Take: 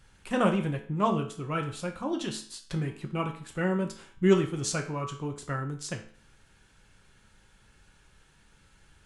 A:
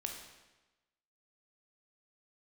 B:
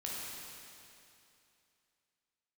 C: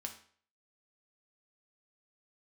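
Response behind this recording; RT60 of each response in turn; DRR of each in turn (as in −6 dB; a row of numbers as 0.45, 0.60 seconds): C; 1.1, 2.7, 0.50 seconds; 2.0, −5.5, 3.0 decibels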